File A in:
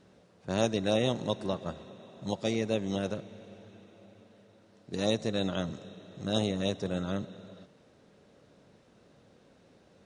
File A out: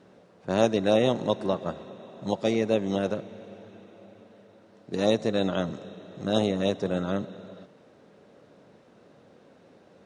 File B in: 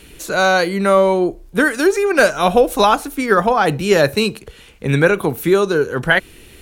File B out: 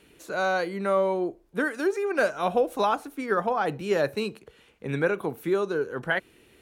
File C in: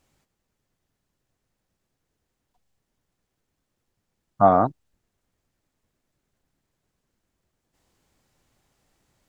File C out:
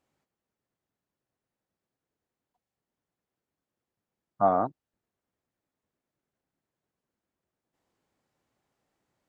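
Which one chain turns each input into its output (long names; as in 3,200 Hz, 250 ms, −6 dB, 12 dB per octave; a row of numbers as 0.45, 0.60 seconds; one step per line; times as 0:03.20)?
high-pass filter 230 Hz 6 dB per octave
high-shelf EQ 2,500 Hz −9.5 dB
loudness normalisation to −27 LKFS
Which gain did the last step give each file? +7.5, −9.5, −5.5 decibels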